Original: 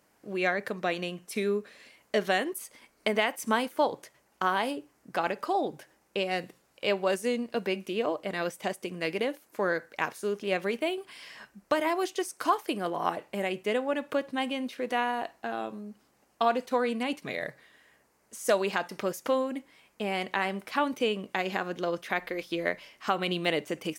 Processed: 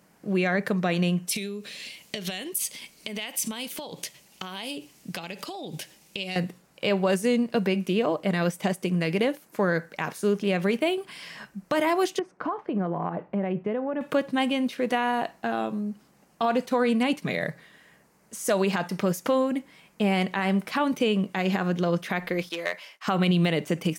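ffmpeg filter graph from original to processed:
ffmpeg -i in.wav -filter_complex "[0:a]asettb=1/sr,asplit=3[link_01][link_02][link_03];[link_01]atrim=end=1.274[link_04];[link_02]atrim=start=1.27:end=6.36,asetpts=PTS-STARTPTS,afade=type=in:duration=0.004:curve=qsin,afade=type=out:start_time=5.086:duration=0.004:curve=qsin,acompressor=threshold=-38dB:ratio=12:attack=3.2:release=140:knee=1:detection=peak,highshelf=frequency=2100:width_type=q:width=1.5:gain=10.5[link_05];[link_03]atrim=start=6.356[link_06];[link_04][link_05]acrossfade=duration=0.004:curve1=hsin:curve2=qsin[link_07];[link_07][link_06]acrossfade=duration=0.004:curve1=qsin:curve2=hsin,asettb=1/sr,asplit=3[link_08][link_09][link_10];[link_08]atrim=end=12.194[link_11];[link_09]atrim=start=12.19:end=14.01,asetpts=PTS-STARTPTS,afade=type=in:duration=0.004:curve=qsin,afade=type=out:start_time=1.816:duration=0.004:curve=qsin,lowpass=1300,acompressor=threshold=-31dB:ratio=4:attack=3.2:release=140:knee=1:detection=peak[link_12];[link_10]atrim=start=14.006[link_13];[link_11][link_12]acrossfade=duration=0.004:curve1=hsin:curve2=qsin[link_14];[link_14][link_13]acrossfade=duration=0.004:curve1=qsin:curve2=hsin,asettb=1/sr,asplit=3[link_15][link_16][link_17];[link_15]atrim=end=22.494[link_18];[link_16]atrim=start=22.49:end=23.07,asetpts=PTS-STARTPTS,afade=type=in:duration=0.004:curve=qsin,afade=type=out:start_time=0.576:duration=0.004:curve=qsin,aeval=exprs='clip(val(0),-1,0.0531)':channel_layout=same,highpass=640,agate=range=-33dB:threshold=-54dB:ratio=3:release=100:detection=peak[link_19];[link_17]atrim=start=23.066[link_20];[link_18][link_19]acrossfade=duration=0.004:curve1=hsin:curve2=qsin[link_21];[link_21][link_20]acrossfade=duration=0.004:curve1=qsin:curve2=hsin,equalizer=frequency=170:width=2.3:gain=12.5,alimiter=limit=-19dB:level=0:latency=1:release=56,volume=5dB" out.wav

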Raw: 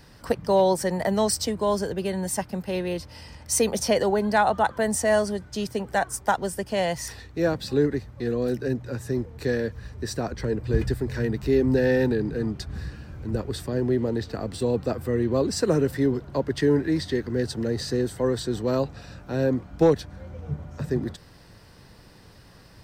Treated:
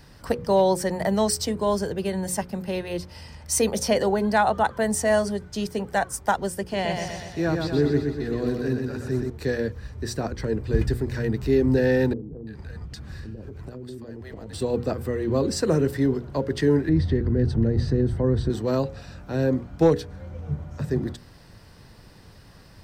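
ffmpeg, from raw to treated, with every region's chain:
ffmpeg -i in.wav -filter_complex "[0:a]asettb=1/sr,asplit=3[link_01][link_02][link_03];[link_01]atrim=end=6.614[link_04];[link_02]atrim=start=6.61:end=9.3,asetpts=PTS-STARTPTS,afade=type=in:duration=0.004:curve=qsin,afade=type=out:start_time=2.686:duration=0.004:curve=qsin,acrossover=split=5500[link_05][link_06];[link_06]acompressor=threshold=-53dB:ratio=4:attack=1:release=60[link_07];[link_05][link_07]amix=inputs=2:normalize=0,equalizer=frequency=530:width=5.8:gain=-9,aecho=1:1:122|244|366|488|610|732|854|976:0.596|0.34|0.194|0.11|0.0629|0.0358|0.0204|0.0116,atrim=end_sample=118629[link_08];[link_03]atrim=start=9.296[link_09];[link_04][link_08]acrossfade=duration=0.004:curve1=hsin:curve2=qsin[link_10];[link_10][link_09]acrossfade=duration=0.004:curve1=qsin:curve2=hsin,asettb=1/sr,asplit=3[link_11][link_12][link_13];[link_11]atrim=end=12.134[link_14];[link_12]atrim=start=12.13:end=14.53,asetpts=PTS-STARTPTS,afade=type=in:duration=0.004:curve=qsin,afade=type=out:start_time=2.396:duration=0.004:curve=qsin,acrossover=split=660[link_15][link_16];[link_16]adelay=340[link_17];[link_15][link_17]amix=inputs=2:normalize=0,atrim=end_sample=105840,acompressor=threshold=-34dB:ratio=12:attack=3.2:release=140:knee=1:detection=peak[link_18];[link_13]atrim=start=14.526[link_19];[link_14][link_18]acrossfade=duration=0.004:curve1=hsin:curve2=qsin[link_20];[link_20][link_19]acrossfade=duration=0.004:curve1=qsin:curve2=hsin,asettb=1/sr,asplit=3[link_21][link_22][link_23];[link_21]atrim=end=16.894[link_24];[link_22]atrim=start=16.89:end=18.5,asetpts=PTS-STARTPTS,afade=type=in:duration=0.004:curve=qsin,afade=type=out:start_time=1.606:duration=0.004:curve=qsin,bandreject=frequency=7000:width=6.7,acompressor=threshold=-30dB:ratio=1.5:attack=3.2:release=140:knee=1:detection=peak,aemphasis=mode=reproduction:type=riaa[link_25];[link_23]atrim=start=18.496[link_26];[link_24][link_25]acrossfade=duration=0.004:curve1=hsin:curve2=qsin[link_27];[link_27][link_26]acrossfade=duration=0.004:curve1=qsin:curve2=hsin,lowshelf=frequency=180:gain=4,bandreject=frequency=60:width_type=h:width=6,bandreject=frequency=120:width_type=h:width=6,bandreject=frequency=180:width_type=h:width=6,bandreject=frequency=240:width_type=h:width=6,bandreject=frequency=300:width_type=h:width=6,bandreject=frequency=360:width_type=h:width=6,bandreject=frequency=420:width_type=h:width=6,bandreject=frequency=480:width_type=h:width=6,bandreject=frequency=540:width_type=h:width=6" out.wav

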